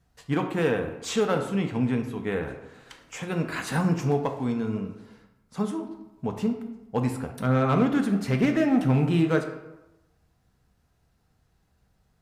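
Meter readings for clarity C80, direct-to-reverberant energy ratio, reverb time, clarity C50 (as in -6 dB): 10.5 dB, 4.0 dB, 1.0 s, 8.0 dB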